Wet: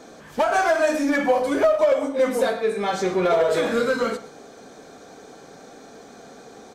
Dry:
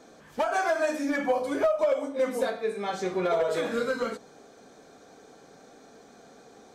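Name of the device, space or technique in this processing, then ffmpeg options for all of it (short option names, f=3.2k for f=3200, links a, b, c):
parallel distortion: -filter_complex "[0:a]aecho=1:1:120:0.126,asplit=2[a][b];[b]asoftclip=type=hard:threshold=-31.5dB,volume=-7dB[c];[a][c]amix=inputs=2:normalize=0,volume=5dB"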